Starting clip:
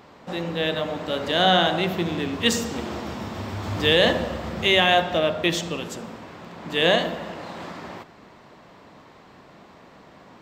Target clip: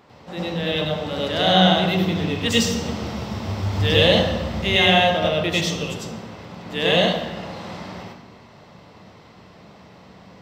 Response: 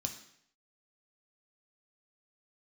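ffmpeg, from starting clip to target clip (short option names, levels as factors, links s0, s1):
-filter_complex "[0:a]asplit=2[s0][s1];[1:a]atrim=start_sample=2205,asetrate=37485,aresample=44100,adelay=98[s2];[s1][s2]afir=irnorm=-1:irlink=0,volume=1.41[s3];[s0][s3]amix=inputs=2:normalize=0,volume=0.631"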